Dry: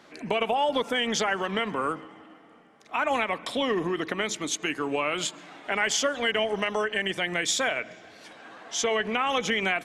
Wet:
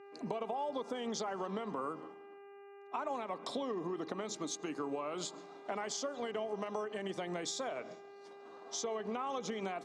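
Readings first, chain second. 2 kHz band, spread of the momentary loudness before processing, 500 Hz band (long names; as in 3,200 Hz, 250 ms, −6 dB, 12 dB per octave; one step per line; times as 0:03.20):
−21.0 dB, 8 LU, −10.0 dB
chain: downward expander −40 dBFS
flat-topped bell 2,200 Hz −13.5 dB 1.3 octaves
downward compressor, threshold −32 dBFS, peak gain reduction 10.5 dB
hum with harmonics 400 Hz, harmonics 7, −51 dBFS −8 dB per octave
band-pass filter 140–6,500 Hz
level −3 dB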